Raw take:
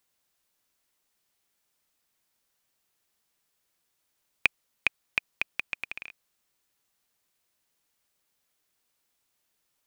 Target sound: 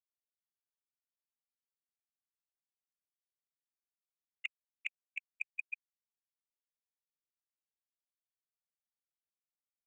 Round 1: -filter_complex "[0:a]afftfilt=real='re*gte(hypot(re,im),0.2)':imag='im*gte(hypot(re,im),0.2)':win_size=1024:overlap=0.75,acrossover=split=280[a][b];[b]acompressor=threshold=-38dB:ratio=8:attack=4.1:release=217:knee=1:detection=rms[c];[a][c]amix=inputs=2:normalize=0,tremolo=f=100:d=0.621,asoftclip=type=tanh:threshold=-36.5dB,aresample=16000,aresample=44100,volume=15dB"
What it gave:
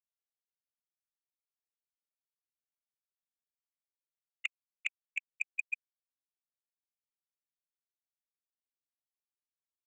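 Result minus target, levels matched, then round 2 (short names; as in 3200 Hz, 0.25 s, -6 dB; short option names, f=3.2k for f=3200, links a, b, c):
compressor: peak gain reduction -6.5 dB
-filter_complex "[0:a]afftfilt=real='re*gte(hypot(re,im),0.2)':imag='im*gte(hypot(re,im),0.2)':win_size=1024:overlap=0.75,acrossover=split=280[a][b];[b]acompressor=threshold=-45.5dB:ratio=8:attack=4.1:release=217:knee=1:detection=rms[c];[a][c]amix=inputs=2:normalize=0,tremolo=f=100:d=0.621,asoftclip=type=tanh:threshold=-36.5dB,aresample=16000,aresample=44100,volume=15dB"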